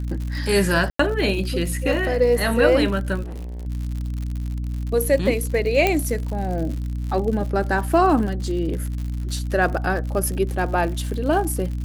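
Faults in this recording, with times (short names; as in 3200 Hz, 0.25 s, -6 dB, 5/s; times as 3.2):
crackle 100/s -29 dBFS
hum 60 Hz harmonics 5 -26 dBFS
0.9–0.99 gap 94 ms
3.22–3.67 clipped -29.5 dBFS
5.87 pop -5 dBFS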